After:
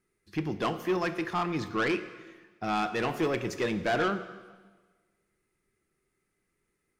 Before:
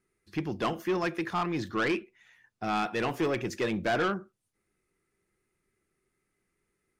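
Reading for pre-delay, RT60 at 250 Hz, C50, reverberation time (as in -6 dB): 5 ms, 1.4 s, 12.5 dB, 1.4 s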